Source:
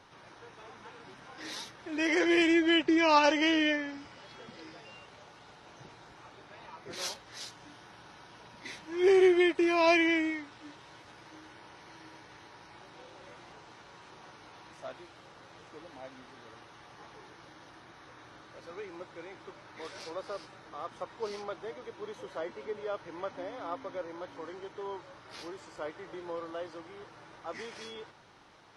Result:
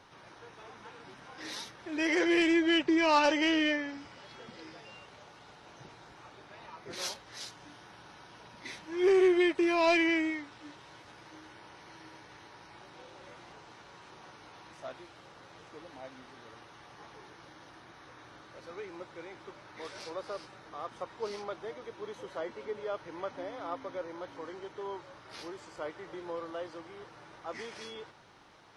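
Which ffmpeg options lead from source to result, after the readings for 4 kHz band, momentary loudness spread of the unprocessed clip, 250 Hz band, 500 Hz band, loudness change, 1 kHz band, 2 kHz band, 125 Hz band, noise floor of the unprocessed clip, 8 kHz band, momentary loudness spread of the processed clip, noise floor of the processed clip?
-1.0 dB, 24 LU, -1.0 dB, -1.0 dB, -1.5 dB, -1.5 dB, -1.0 dB, 0.0 dB, -55 dBFS, -0.5 dB, 26 LU, -55 dBFS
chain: -af "asoftclip=type=tanh:threshold=-16.5dB"

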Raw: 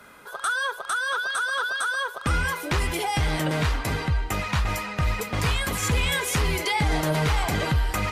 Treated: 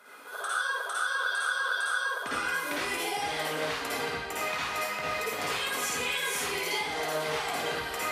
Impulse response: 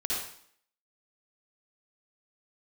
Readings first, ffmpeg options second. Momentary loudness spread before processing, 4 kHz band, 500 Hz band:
4 LU, -3.0 dB, -3.0 dB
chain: -filter_complex "[0:a]highpass=370,acompressor=threshold=-29dB:ratio=6[a];[1:a]atrim=start_sample=2205[b];[a][b]afir=irnorm=-1:irlink=0,volume=-5dB"

